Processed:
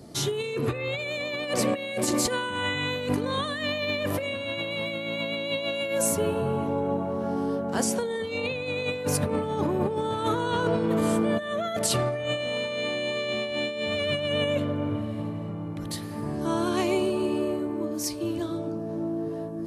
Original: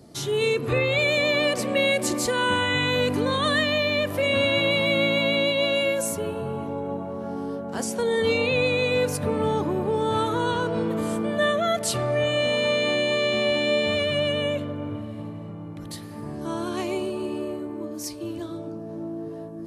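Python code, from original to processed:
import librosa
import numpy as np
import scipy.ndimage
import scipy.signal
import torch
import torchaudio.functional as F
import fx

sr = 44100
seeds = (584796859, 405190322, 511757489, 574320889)

y = fx.over_compress(x, sr, threshold_db=-26.0, ratio=-0.5)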